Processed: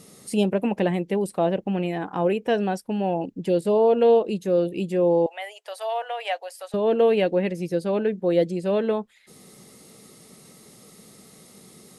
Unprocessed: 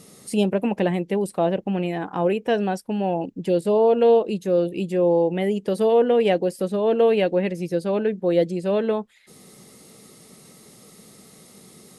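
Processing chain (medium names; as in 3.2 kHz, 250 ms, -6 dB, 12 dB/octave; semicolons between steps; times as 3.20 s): 5.26–6.74 s: elliptic high-pass 660 Hz, stop band 70 dB; trim -1 dB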